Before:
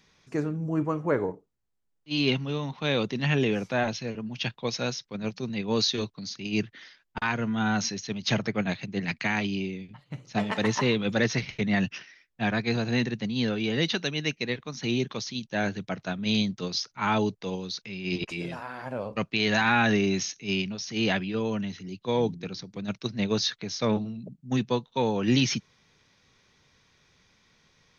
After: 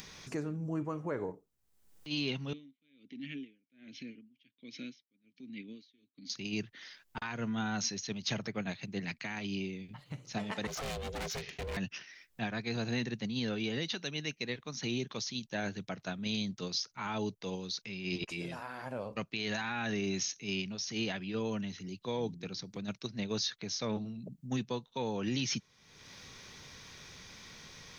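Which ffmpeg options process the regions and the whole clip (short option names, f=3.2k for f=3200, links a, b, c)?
-filter_complex "[0:a]asettb=1/sr,asplit=3[a][b][c];[a]atrim=end=2.534[d];[b]atrim=start=2.53:end=6.3,asetpts=PTS-STARTPTS,afade=t=in:d=0.004:c=qsin,afade=t=out:st=3.766:d=0.004:c=qsin,asplit=3[e][f][g];[e]bandpass=f=270:t=q:w=8,volume=0dB[h];[f]bandpass=f=2.29k:t=q:w=8,volume=-6dB[i];[g]bandpass=f=3.01k:t=q:w=8,volume=-9dB[j];[h][i][j]amix=inputs=3:normalize=0,aeval=exprs='val(0)*pow(10,-39*(0.5-0.5*cos(2*PI*1.3*n/s))/20)':c=same[k];[c]atrim=start=6.296[l];[d][k]acrossfade=d=0.004:c1=hsin:c2=qsin[m];[m][l]acrossfade=d=0.004:c1=qsin:c2=hsin,asettb=1/sr,asplit=3[n][o][p];[n]atrim=end=10.674[q];[o]atrim=start=10.67:end=11.77,asetpts=PTS-STARTPTS,afade=t=in:d=0.004:c=qsin,afade=t=out:st=1.096:d=0.004:c=qsin,aeval=exprs='val(0)*sin(2*PI*280*n/s)':c=same,volume=29.5dB,asoftclip=hard,volume=-29.5dB[r];[p]atrim=start=11.766[s];[q][r]acrossfade=d=0.004:c1=hsin:c2=qsin[t];[t][s]acrossfade=d=0.004:c1=qsin:c2=hsin,acompressor=mode=upward:threshold=-31dB:ratio=2.5,alimiter=limit=-19.5dB:level=0:latency=1:release=128,highshelf=f=6.1k:g=9,volume=-6.5dB"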